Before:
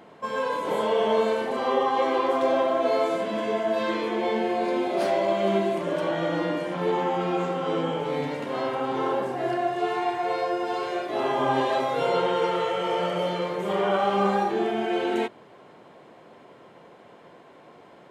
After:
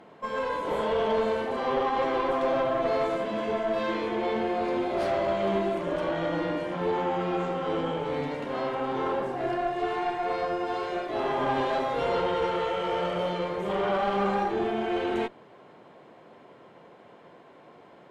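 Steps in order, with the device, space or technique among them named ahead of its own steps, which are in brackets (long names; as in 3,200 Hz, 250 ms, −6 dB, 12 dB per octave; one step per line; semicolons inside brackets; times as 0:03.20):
tube preamp driven hard (tube saturation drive 19 dB, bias 0.45; high-shelf EQ 6,600 Hz −8.5 dB)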